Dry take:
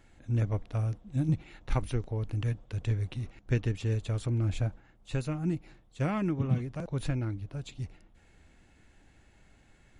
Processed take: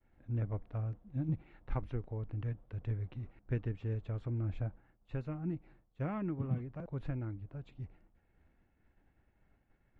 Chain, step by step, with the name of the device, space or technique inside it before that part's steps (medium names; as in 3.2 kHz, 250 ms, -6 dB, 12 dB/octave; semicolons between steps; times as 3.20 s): hearing-loss simulation (low-pass 1.8 kHz 12 dB/octave; expander -55 dBFS); trim -7 dB